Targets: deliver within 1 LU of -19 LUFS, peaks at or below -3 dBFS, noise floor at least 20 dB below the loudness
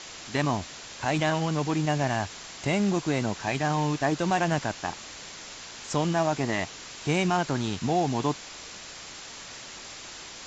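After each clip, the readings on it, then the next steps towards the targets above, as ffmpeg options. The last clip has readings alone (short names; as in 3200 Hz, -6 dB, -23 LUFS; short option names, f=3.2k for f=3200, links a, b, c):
noise floor -43 dBFS; noise floor target -48 dBFS; loudness -27.5 LUFS; peak -13.0 dBFS; loudness target -19.0 LUFS
-> -af "afftdn=nr=6:nf=-43"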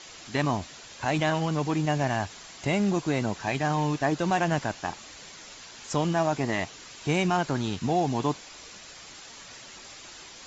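noise floor -46 dBFS; noise floor target -48 dBFS
-> -af "afftdn=nr=6:nf=-46"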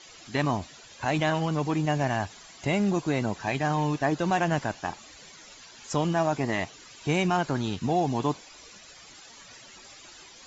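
noise floor -50 dBFS; loudness -28.0 LUFS; peak -13.5 dBFS; loudness target -19.0 LUFS
-> -af "volume=9dB"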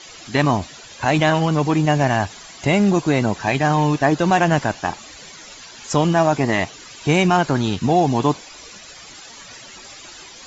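loudness -19.0 LUFS; peak -4.5 dBFS; noise floor -41 dBFS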